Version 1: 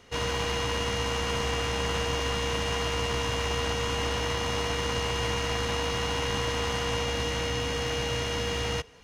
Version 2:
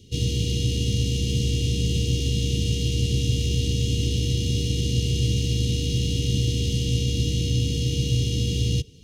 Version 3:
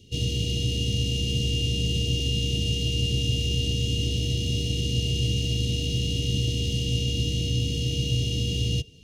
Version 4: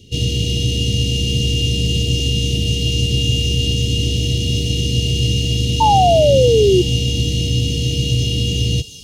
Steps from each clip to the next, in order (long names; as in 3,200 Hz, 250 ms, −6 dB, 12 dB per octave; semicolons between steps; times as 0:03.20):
elliptic band-stop filter 380–3,200 Hz, stop band 70 dB; parametric band 120 Hz +11 dB 1.4 octaves; level +4.5 dB
hollow resonant body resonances 650/2,800 Hz, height 14 dB, ringing for 60 ms; level −3 dB
sound drawn into the spectrogram fall, 0:05.80–0:06.82, 350–910 Hz −20 dBFS; delay with a high-pass on its return 323 ms, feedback 67%, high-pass 5,100 Hz, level −7.5 dB; level +8 dB